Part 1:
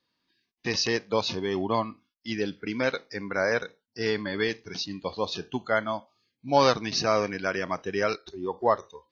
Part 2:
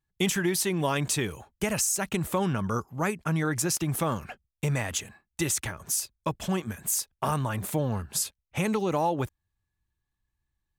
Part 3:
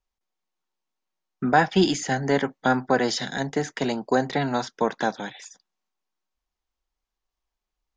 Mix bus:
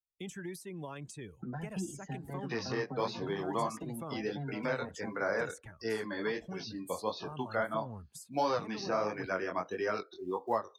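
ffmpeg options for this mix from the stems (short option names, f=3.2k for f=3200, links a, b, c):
-filter_complex "[0:a]highpass=f=290:p=1,acrusher=bits=7:mode=log:mix=0:aa=0.000001,flanger=delay=17.5:depth=6.6:speed=1.5,adelay=1850,volume=1.5dB[a];[1:a]alimiter=limit=-18dB:level=0:latency=1:release=205,volume=-14dB[b];[2:a]equalizer=f=130:w=1.5:g=7,acrossover=split=270[c][d];[d]acompressor=threshold=-37dB:ratio=2.5[e];[c][e]amix=inputs=2:normalize=0,asplit=2[f][g];[g]adelay=5.2,afreqshift=2.5[h];[f][h]amix=inputs=2:normalize=1,volume=-9.5dB[i];[a][b][i]amix=inputs=3:normalize=0,afftdn=nr=16:nf=-49,acrossover=split=320|680|1500[j][k][l][m];[j]acompressor=threshold=-39dB:ratio=4[n];[k]acompressor=threshold=-38dB:ratio=4[o];[l]acompressor=threshold=-33dB:ratio=4[p];[m]acompressor=threshold=-50dB:ratio=4[q];[n][o][p][q]amix=inputs=4:normalize=0,adynamicequalizer=threshold=0.00282:dfrequency=3800:dqfactor=0.7:tfrequency=3800:tqfactor=0.7:attack=5:release=100:ratio=0.375:range=2:mode=boostabove:tftype=highshelf"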